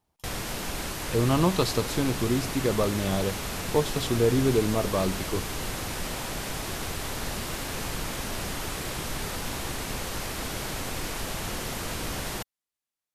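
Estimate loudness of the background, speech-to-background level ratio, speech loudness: -32.5 LUFS, 5.5 dB, -27.0 LUFS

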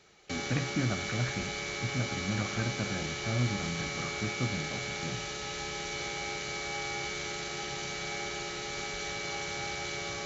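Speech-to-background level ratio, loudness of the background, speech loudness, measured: -1.0 dB, -35.0 LUFS, -36.0 LUFS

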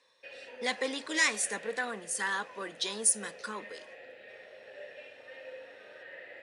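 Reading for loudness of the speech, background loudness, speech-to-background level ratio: -31.5 LUFS, -48.0 LUFS, 16.5 dB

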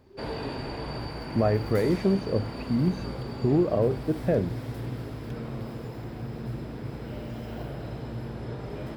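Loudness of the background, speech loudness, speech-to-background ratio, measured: -36.0 LUFS, -26.5 LUFS, 9.5 dB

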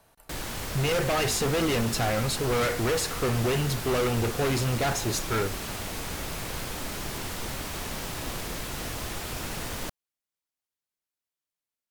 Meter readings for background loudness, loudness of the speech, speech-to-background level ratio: -34.0 LUFS, -27.5 LUFS, 6.5 dB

